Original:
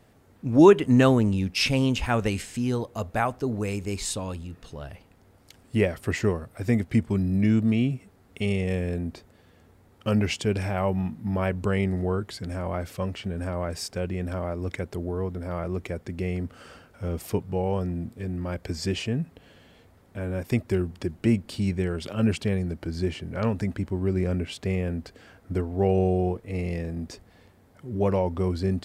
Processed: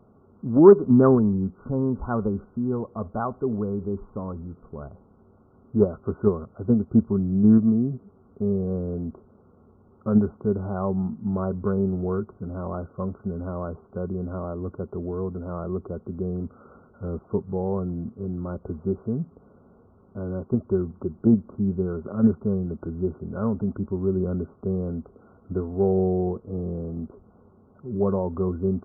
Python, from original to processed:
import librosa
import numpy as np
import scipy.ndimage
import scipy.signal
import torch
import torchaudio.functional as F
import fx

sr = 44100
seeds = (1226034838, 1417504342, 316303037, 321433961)

p1 = fx.level_steps(x, sr, step_db=20)
p2 = x + (p1 * librosa.db_to_amplitude(-2.0))
p3 = fx.small_body(p2, sr, hz=(210.0, 390.0, 1100.0), ring_ms=45, db=8)
p4 = fx.cheby_harmonics(p3, sr, harmonics=(5,), levels_db=(-31,), full_scale_db=4.5)
p5 = fx.brickwall_lowpass(p4, sr, high_hz=1500.0)
p6 = fx.doppler_dist(p5, sr, depth_ms=0.1)
y = p6 * librosa.db_to_amplitude(-6.0)